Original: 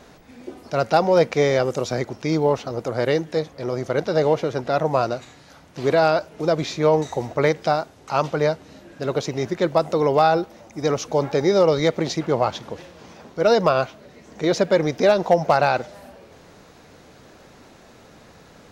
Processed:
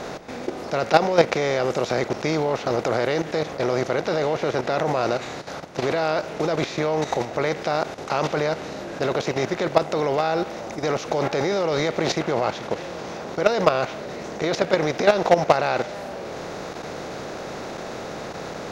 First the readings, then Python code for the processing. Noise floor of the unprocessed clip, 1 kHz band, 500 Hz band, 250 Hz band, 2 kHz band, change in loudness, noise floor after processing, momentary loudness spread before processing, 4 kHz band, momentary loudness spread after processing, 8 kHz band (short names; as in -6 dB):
-49 dBFS, -1.5 dB, -2.0 dB, -2.0 dB, +1.5 dB, -3.0 dB, -34 dBFS, 11 LU, +1.0 dB, 13 LU, n/a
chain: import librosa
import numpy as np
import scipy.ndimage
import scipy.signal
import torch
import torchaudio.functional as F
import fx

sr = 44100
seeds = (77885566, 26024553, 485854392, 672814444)

y = fx.bin_compress(x, sr, power=0.6)
y = fx.dynamic_eq(y, sr, hz=2400.0, q=0.9, threshold_db=-33.0, ratio=4.0, max_db=4)
y = fx.level_steps(y, sr, step_db=11)